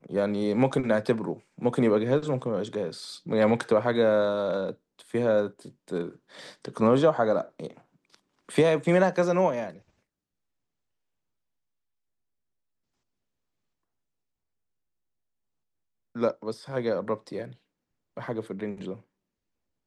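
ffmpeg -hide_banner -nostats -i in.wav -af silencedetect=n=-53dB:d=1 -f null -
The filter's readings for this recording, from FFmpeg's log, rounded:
silence_start: 9.82
silence_end: 16.15 | silence_duration: 6.34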